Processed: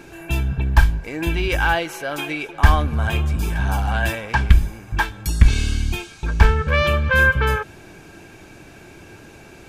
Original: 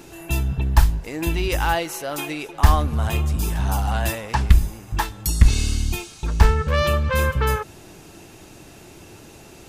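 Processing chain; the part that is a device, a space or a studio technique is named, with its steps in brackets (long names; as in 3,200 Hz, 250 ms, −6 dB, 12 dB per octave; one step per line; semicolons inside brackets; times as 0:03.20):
inside a helmet (high-shelf EQ 4,800 Hz −8 dB; hollow resonant body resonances 1,600/2,300 Hz, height 17 dB, ringing for 60 ms)
dynamic equaliser 3,200 Hz, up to +6 dB, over −48 dBFS, Q 5.3
level +1 dB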